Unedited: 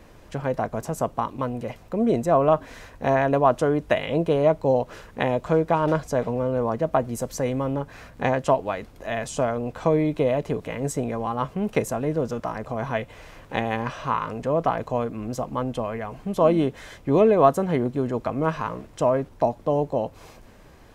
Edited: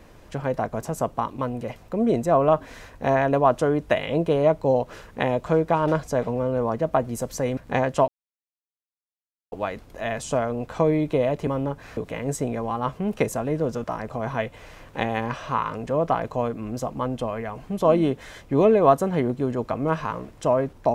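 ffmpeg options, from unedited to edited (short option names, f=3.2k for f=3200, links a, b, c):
-filter_complex "[0:a]asplit=5[a][b][c][d][e];[a]atrim=end=7.572[f];[b]atrim=start=8.068:end=8.58,asetpts=PTS-STARTPTS,afade=t=out:st=0.508:d=0.004:c=hsin,apad=pad_dur=1.44[g];[c]atrim=start=8.58:end=10.532,asetpts=PTS-STARTPTS,afade=t=in:d=0.004:c=hsin[h];[d]atrim=start=7.568:end=8.072[i];[e]atrim=start=10.528[j];[g][h]concat=n=2:v=0:a=1[k];[f][k]acrossfade=d=0.004:c1=hsin:c2=hsin[l];[l][i]acrossfade=d=0.004:c1=hsin:c2=hsin[m];[m][j]acrossfade=d=0.004:c1=hsin:c2=hsin"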